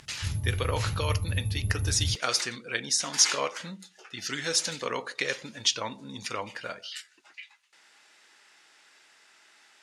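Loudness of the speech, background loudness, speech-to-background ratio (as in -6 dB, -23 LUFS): -29.0 LUFS, -32.0 LUFS, 3.0 dB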